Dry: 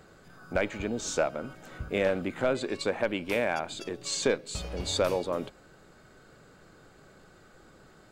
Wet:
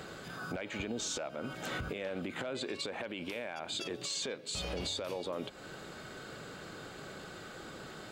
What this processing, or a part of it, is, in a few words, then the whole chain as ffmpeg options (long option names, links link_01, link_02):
broadcast voice chain: -af "highpass=frequency=110:poles=1,deesser=0.6,acompressor=threshold=-42dB:ratio=4,equalizer=frequency=3300:width_type=o:width=0.92:gain=6,alimiter=level_in=13dB:limit=-24dB:level=0:latency=1:release=46,volume=-13dB,volume=9dB"